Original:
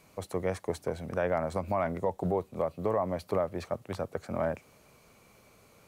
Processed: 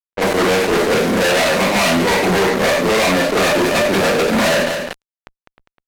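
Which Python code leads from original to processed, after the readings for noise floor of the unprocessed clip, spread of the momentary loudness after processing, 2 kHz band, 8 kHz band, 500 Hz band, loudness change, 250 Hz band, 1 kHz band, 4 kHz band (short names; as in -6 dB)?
-61 dBFS, 2 LU, +27.0 dB, n/a, +15.5 dB, +18.0 dB, +18.5 dB, +17.0 dB, +33.5 dB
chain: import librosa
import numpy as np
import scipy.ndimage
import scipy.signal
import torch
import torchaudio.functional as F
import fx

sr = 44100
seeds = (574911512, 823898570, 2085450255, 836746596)

y = scipy.signal.medfilt(x, 41)
y = scipy.signal.sosfilt(scipy.signal.butter(4, 260.0, 'highpass', fs=sr, output='sos'), y)
y = fx.peak_eq(y, sr, hz=500.0, db=-11.0, octaves=1.8)
y = fx.rev_schroeder(y, sr, rt60_s=0.35, comb_ms=32, drr_db=-9.5)
y = fx.dynamic_eq(y, sr, hz=3500.0, q=0.84, threshold_db=-46.0, ratio=4.0, max_db=3)
y = fx.rider(y, sr, range_db=4, speed_s=0.5)
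y = fx.fuzz(y, sr, gain_db=44.0, gate_db=-53.0)
y = fx.env_lowpass(y, sr, base_hz=2100.0, full_db=-17.0)
y = y + 10.0 ** (-20.0 / 20.0) * np.pad(y, (int(203 * sr / 1000.0), 0))[:len(y)]
y = fx.sustainer(y, sr, db_per_s=37.0)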